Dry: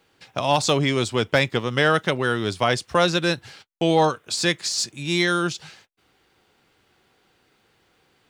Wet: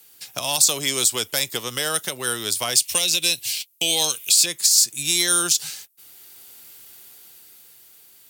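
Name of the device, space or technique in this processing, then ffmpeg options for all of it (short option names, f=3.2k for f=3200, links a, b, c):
FM broadcast chain: -filter_complex "[0:a]asettb=1/sr,asplit=3[a][b][c];[a]atrim=end=2.754[d];[b]atrim=start=2.75:end=4.46,asetpts=PTS-STARTPTS,afade=t=in:d=0.004:c=qsin,afade=t=out:st=1.706:d=0.004:c=qsin,highshelf=f=1.9k:t=q:w=3:g=9[e];[c]atrim=start=4.456[f];[d][e]acrossfade=d=0.004:c1=hsin:c2=qsin[g];[g][f]acrossfade=d=0.004:c1=qsin:c2=hsin,highpass=58,dynaudnorm=f=270:g=11:m=11dB,acrossover=split=340|1300|3400[h][i][j][k];[h]acompressor=threshold=-33dB:ratio=4[l];[i]acompressor=threshold=-22dB:ratio=4[m];[j]acompressor=threshold=-31dB:ratio=4[n];[k]acompressor=threshold=-27dB:ratio=4[o];[l][m][n][o]amix=inputs=4:normalize=0,aemphasis=mode=production:type=75fm,alimiter=limit=-11dB:level=0:latency=1:release=192,asoftclip=type=hard:threshold=-13.5dB,lowpass=f=15k:w=0.5412,lowpass=f=15k:w=1.3066,aemphasis=mode=production:type=75fm,volume=-3dB"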